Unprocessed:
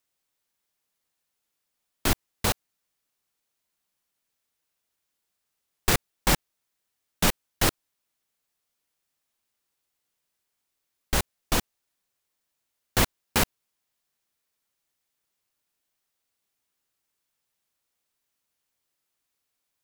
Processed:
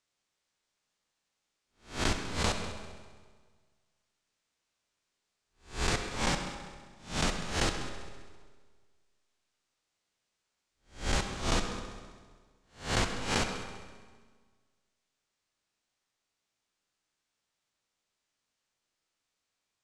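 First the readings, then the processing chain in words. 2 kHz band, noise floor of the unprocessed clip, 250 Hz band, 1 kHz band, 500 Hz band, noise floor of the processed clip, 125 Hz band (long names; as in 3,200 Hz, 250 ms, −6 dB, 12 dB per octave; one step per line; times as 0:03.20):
−4.0 dB, −81 dBFS, −4.0 dB, −3.5 dB, −3.5 dB, −85 dBFS, −4.0 dB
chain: peak hold with a rise ahead of every peak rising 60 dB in 0.35 s
low-pass filter 7,800 Hz 24 dB per octave
downward compressor 4 to 1, threshold −26 dBFS, peak gain reduction 9 dB
on a send: echo machine with several playback heads 66 ms, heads all three, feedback 51%, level −18 dB
on the sum: comb and all-pass reverb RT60 1.6 s, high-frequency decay 0.55×, pre-delay 10 ms, DRR 7 dB
speech leveller 2 s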